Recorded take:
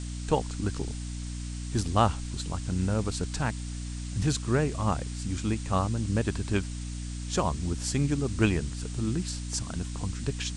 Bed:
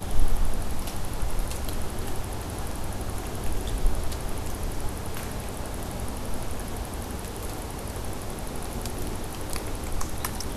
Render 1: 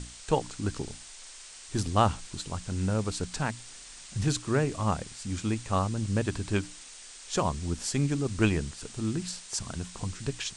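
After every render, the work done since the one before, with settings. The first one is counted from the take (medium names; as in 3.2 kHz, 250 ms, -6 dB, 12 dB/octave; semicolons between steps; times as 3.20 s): hum notches 60/120/180/240/300 Hz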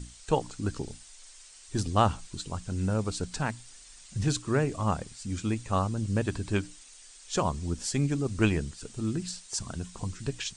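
noise reduction 8 dB, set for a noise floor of -47 dBFS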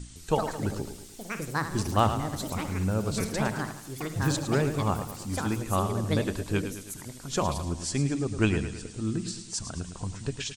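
feedback delay 108 ms, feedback 51%, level -10 dB; ever faster or slower copies 159 ms, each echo +6 st, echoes 2, each echo -6 dB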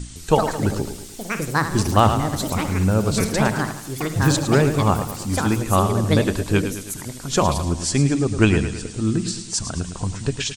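trim +9 dB; peak limiter -2 dBFS, peak gain reduction 2.5 dB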